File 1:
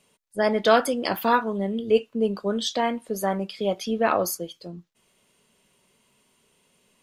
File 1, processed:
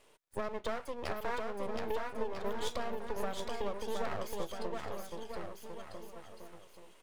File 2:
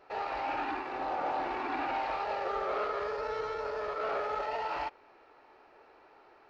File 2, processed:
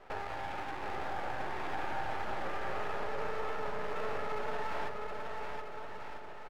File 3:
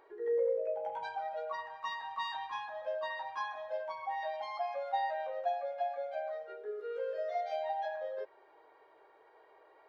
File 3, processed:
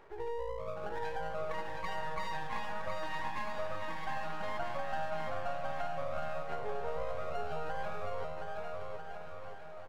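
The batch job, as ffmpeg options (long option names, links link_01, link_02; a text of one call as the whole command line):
ffmpeg -i in.wav -filter_complex "[0:a]highpass=frequency=330:width=0.5412,highpass=frequency=330:width=1.3066,highshelf=frequency=2300:gain=-10.5,acompressor=threshold=-42dB:ratio=6,aeval=exprs='max(val(0),0)':channel_layout=same,asplit=2[link_01][link_02];[link_02]aecho=0:1:720|1296|1757|2125|2420:0.631|0.398|0.251|0.158|0.1[link_03];[link_01][link_03]amix=inputs=2:normalize=0,volume=9dB" out.wav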